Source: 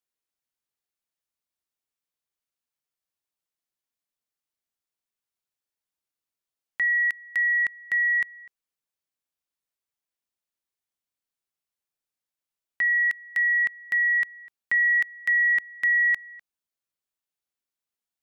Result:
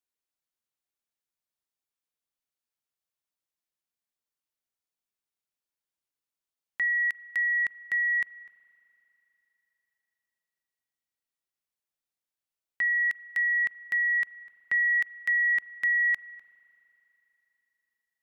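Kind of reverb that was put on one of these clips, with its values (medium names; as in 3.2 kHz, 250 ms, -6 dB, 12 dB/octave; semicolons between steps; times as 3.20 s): spring tank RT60 3.5 s, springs 37 ms, chirp 75 ms, DRR 19.5 dB; trim -3 dB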